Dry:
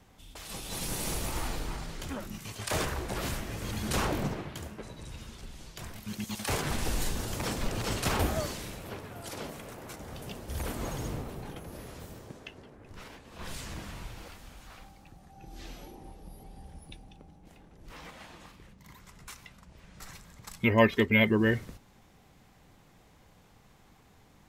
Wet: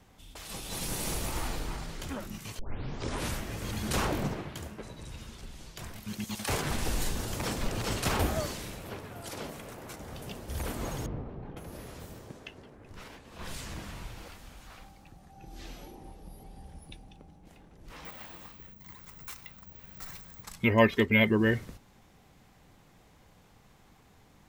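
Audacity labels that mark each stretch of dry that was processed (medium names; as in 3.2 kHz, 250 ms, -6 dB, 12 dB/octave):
2.590000	2.590000	tape start 0.77 s
11.060000	11.570000	tape spacing loss at 10 kHz 45 dB
18.050000	20.430000	careless resampling rate divided by 2×, down filtered, up zero stuff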